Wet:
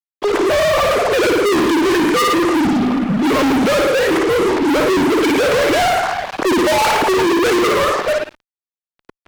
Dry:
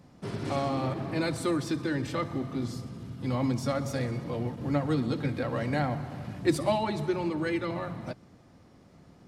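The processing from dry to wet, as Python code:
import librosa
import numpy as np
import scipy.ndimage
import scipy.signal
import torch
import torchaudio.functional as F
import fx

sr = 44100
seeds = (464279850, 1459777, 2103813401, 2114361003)

y = fx.sine_speech(x, sr)
y = fx.room_flutter(y, sr, wall_m=9.6, rt60_s=0.59)
y = fx.fuzz(y, sr, gain_db=46.0, gate_db=-54.0)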